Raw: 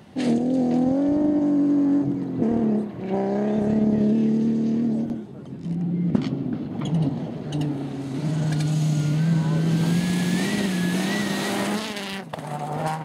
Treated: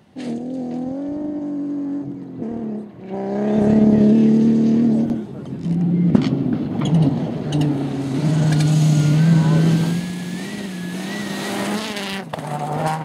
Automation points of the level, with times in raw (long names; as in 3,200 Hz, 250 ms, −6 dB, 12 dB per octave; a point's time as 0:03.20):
0:03.04 −5 dB
0:03.63 +7 dB
0:09.66 +7 dB
0:10.14 −4.5 dB
0:10.84 −4.5 dB
0:12.03 +5 dB